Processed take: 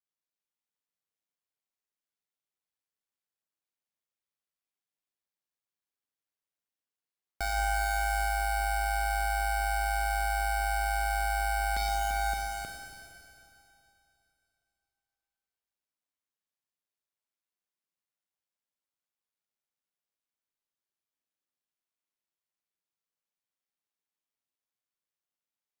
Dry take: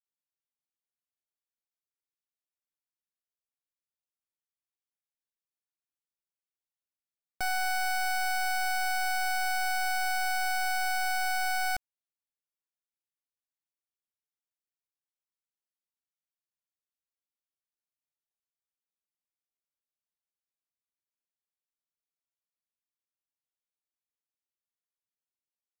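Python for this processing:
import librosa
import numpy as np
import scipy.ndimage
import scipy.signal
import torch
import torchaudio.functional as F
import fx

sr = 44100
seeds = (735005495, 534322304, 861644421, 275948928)

y = fx.highpass(x, sr, hz=93.0, slope=6)
y = fx.high_shelf(y, sr, hz=5100.0, db=-5.0)
y = fx.leveller(y, sr, passes=3)
y = fx.echo_multitap(y, sr, ms=(120, 244, 341, 569, 883), db=(-11.0, -17.0, -7.5, -6.5, -13.5))
y = np.clip(10.0 ** (34.0 / 20.0) * y, -1.0, 1.0) / 10.0 ** (34.0 / 20.0)
y = y * np.sin(2.0 * np.pi * 52.0 * np.arange(len(y)) / sr)
y = fx.rev_schroeder(y, sr, rt60_s=2.8, comb_ms=31, drr_db=1.0)
y = F.gain(torch.from_numpy(y), 6.5).numpy()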